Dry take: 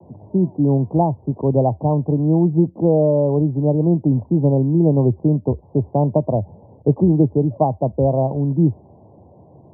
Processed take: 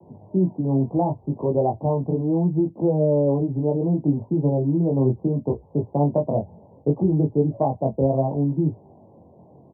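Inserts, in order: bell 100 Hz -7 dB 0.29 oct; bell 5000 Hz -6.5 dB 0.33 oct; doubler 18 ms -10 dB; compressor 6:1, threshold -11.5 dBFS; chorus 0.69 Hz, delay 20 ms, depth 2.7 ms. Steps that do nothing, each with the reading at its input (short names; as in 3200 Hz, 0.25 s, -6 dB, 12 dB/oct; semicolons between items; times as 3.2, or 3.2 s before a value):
bell 5000 Hz: input band ends at 910 Hz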